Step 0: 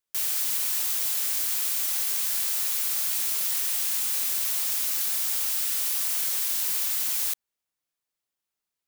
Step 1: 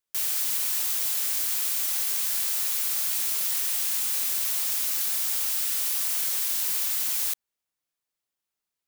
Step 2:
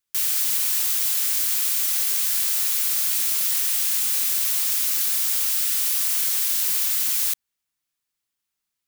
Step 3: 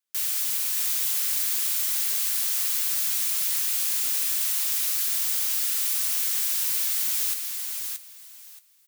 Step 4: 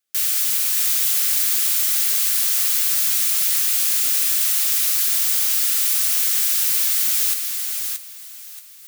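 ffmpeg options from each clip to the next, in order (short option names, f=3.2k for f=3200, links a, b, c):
-af anull
-af "equalizer=f=560:t=o:w=1.5:g=-8,volume=4.5dB"
-filter_complex "[0:a]highpass=f=210:p=1,flanger=delay=8.6:depth=1.4:regen=-53:speed=1.7:shape=sinusoidal,asplit=2[a][b];[b]aecho=0:1:626|1252|1878:0.562|0.107|0.0203[c];[a][c]amix=inputs=2:normalize=0"
-af "areverse,acompressor=mode=upward:threshold=-39dB:ratio=2.5,areverse,asuperstop=centerf=980:order=12:qfactor=5.7,volume=6.5dB"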